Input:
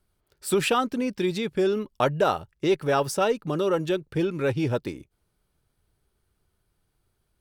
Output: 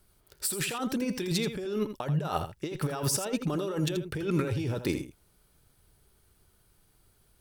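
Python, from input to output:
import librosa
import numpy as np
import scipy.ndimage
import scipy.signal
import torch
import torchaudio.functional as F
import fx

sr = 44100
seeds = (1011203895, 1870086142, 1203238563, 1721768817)

p1 = fx.high_shelf(x, sr, hz=5500.0, db=7.5)
p2 = fx.over_compress(p1, sr, threshold_db=-31.0, ratio=-1.0)
y = p2 + fx.echo_single(p2, sr, ms=82, db=-10.0, dry=0)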